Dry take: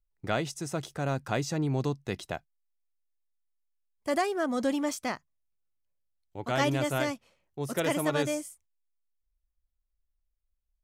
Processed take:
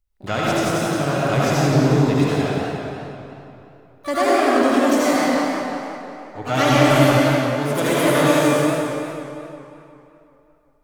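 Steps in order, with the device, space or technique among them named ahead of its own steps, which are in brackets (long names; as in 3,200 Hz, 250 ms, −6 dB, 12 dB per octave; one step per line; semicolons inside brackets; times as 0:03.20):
0:05.04–0:06.75: comb filter 6.6 ms, depth 73%
shimmer-style reverb (pitch-shifted copies added +12 semitones −11 dB; convolution reverb RT60 2.9 s, pre-delay 68 ms, DRR −7 dB)
feedback echo with a swinging delay time 178 ms, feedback 52%, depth 170 cents, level −7 dB
level +4 dB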